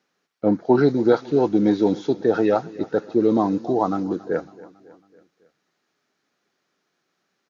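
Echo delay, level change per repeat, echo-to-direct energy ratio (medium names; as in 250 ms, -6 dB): 276 ms, -5.5 dB, -18.5 dB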